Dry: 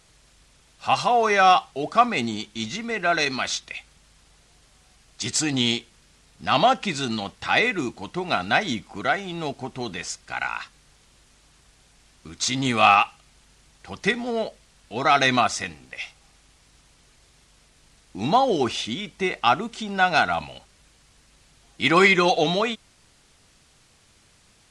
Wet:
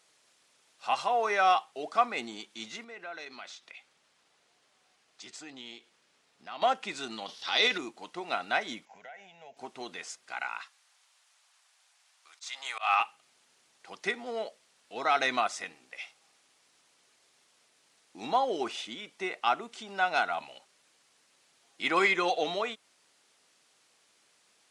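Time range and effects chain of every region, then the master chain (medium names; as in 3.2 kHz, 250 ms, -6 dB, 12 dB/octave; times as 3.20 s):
2.84–6.62 s: treble shelf 6.4 kHz -10 dB + compression 2:1, threshold -40 dBFS
7.26–7.78 s: high-order bell 4.3 kHz +14.5 dB 1.2 oct + transient shaper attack -8 dB, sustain +7 dB
8.85–9.57 s: compression 5:1, threshold -34 dBFS + static phaser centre 1.2 kHz, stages 6 + careless resampling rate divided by 3×, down none, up filtered
10.61–13.00 s: high-pass 720 Hz 24 dB/octave + slow attack 156 ms
whole clip: high-pass 370 Hz 12 dB/octave; dynamic bell 5.2 kHz, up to -4 dB, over -39 dBFS, Q 0.97; trim -7.5 dB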